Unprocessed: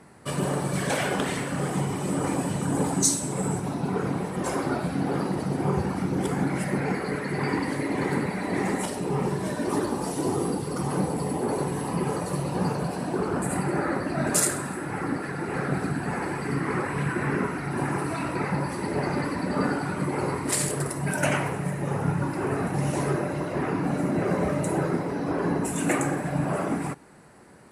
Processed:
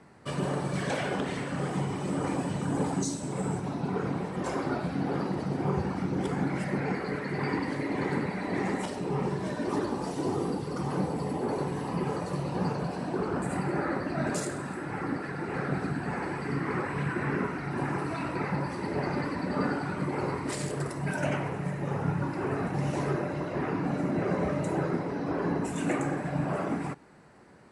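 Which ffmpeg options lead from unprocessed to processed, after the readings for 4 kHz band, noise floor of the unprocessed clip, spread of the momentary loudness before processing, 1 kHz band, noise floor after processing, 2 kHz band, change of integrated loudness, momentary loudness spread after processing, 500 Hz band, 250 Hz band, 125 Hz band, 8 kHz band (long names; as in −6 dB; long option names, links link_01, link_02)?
−6.0 dB, −33 dBFS, 4 LU, −3.5 dB, −37 dBFS, −4.0 dB, −4.0 dB, 3 LU, −3.5 dB, −3.5 dB, −3.5 dB, −13.5 dB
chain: -filter_complex "[0:a]lowpass=6200,acrossover=split=810[link_01][link_02];[link_02]alimiter=limit=-21.5dB:level=0:latency=1:release=315[link_03];[link_01][link_03]amix=inputs=2:normalize=0,volume=-3.5dB"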